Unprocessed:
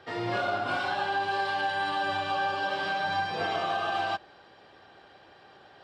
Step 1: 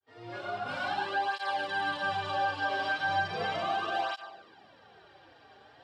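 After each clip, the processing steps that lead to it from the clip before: fade-in on the opening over 0.92 s; Schroeder reverb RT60 0.84 s, combs from 28 ms, DRR 9 dB; cancelling through-zero flanger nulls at 0.36 Hz, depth 6 ms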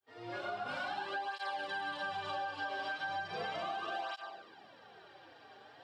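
high-pass 86 Hz; bass shelf 110 Hz -7.5 dB; compression, threshold -36 dBFS, peak gain reduction 10.5 dB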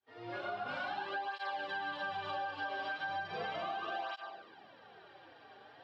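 low-pass 4.3 kHz 12 dB/octave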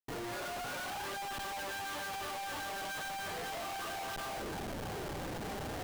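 Schmitt trigger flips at -55 dBFS; trim +1 dB

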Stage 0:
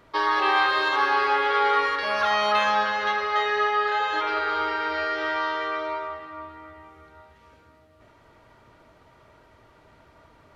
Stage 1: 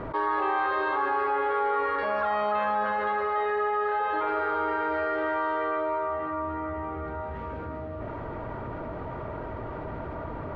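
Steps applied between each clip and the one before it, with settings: Bessel low-pass 960 Hz, order 2; level flattener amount 70%; trim -2.5 dB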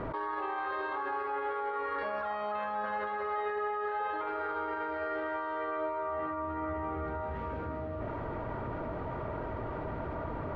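peak limiter -25.5 dBFS, peak gain reduction 10 dB; trim -1.5 dB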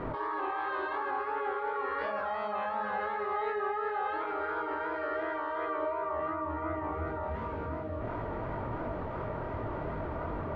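chorus 2.8 Hz, delay 19.5 ms, depth 7.9 ms; trim +4 dB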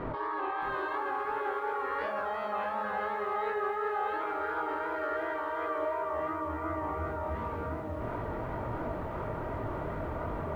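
bit-crushed delay 621 ms, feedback 35%, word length 10-bit, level -9.5 dB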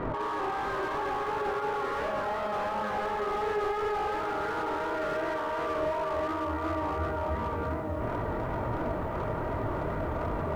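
slew-rate limiter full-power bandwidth 21 Hz; trim +4 dB

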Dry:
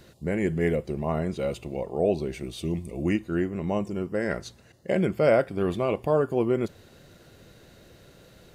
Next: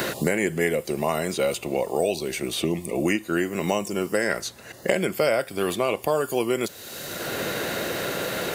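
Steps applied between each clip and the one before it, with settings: RIAA curve recording; three bands compressed up and down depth 100%; trim +5 dB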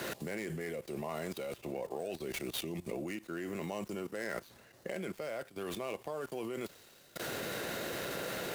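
dead-time distortion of 0.074 ms; level held to a coarse grid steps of 17 dB; three bands expanded up and down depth 40%; trim -4.5 dB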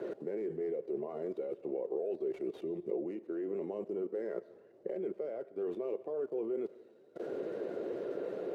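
coarse spectral quantiser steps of 15 dB; band-pass filter 410 Hz, Q 3.2; algorithmic reverb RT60 1.1 s, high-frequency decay 0.9×, pre-delay 70 ms, DRR 19.5 dB; trim +7.5 dB

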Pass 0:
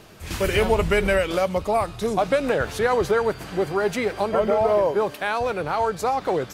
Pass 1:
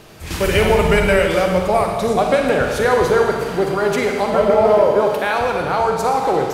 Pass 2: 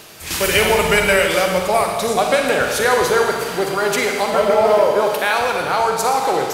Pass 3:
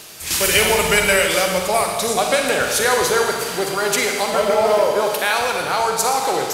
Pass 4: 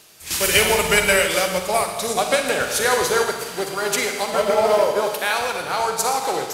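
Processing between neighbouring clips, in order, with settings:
Schroeder reverb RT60 1.6 s, DRR 2 dB; trim +4 dB
tilt EQ +2.5 dB/octave; reverse; upward compressor, threshold -34 dBFS; reverse; trim +1 dB
peaking EQ 8.8 kHz +7.5 dB 2.5 oct; trim -2.5 dB
upward expansion 1.5:1, over -34 dBFS

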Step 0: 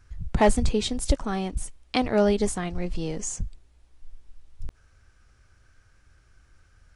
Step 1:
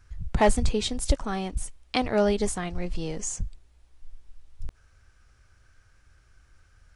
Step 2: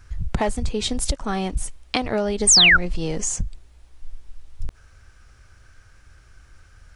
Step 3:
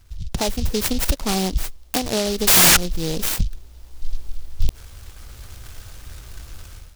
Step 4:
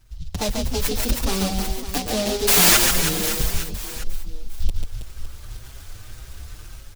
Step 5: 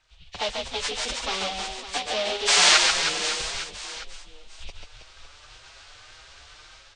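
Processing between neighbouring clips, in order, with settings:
peaking EQ 250 Hz -3 dB 1.9 oct
compression 12:1, threshold -27 dBFS, peak gain reduction 13.5 dB; painted sound fall, 2.47–2.77 s, 1.3–9.2 kHz -21 dBFS; trim +8.5 dB
level rider gain up to 16.5 dB; delay time shaken by noise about 4.2 kHz, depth 0.16 ms; trim -4 dB
on a send: reverse bouncing-ball echo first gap 140 ms, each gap 1.3×, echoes 5; on the sum: endless flanger 6 ms +1.8 Hz
knee-point frequency compression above 1.7 kHz 1.5:1; three-band isolator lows -21 dB, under 510 Hz, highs -22 dB, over 6.4 kHz; trim +1 dB

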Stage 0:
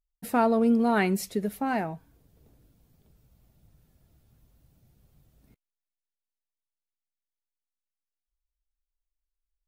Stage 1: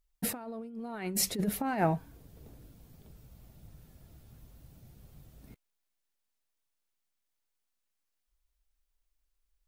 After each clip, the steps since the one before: compressor with a negative ratio -31 dBFS, ratio -0.5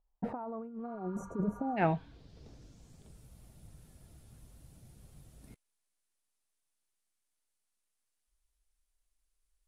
low-pass sweep 860 Hz -> 10 kHz, 0.26–3.25 s; spectral replace 0.89–1.75 s, 810–5700 Hz before; trim -1.5 dB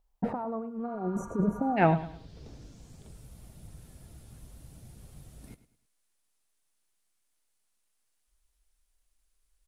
feedback delay 105 ms, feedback 33%, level -15 dB; trim +6 dB

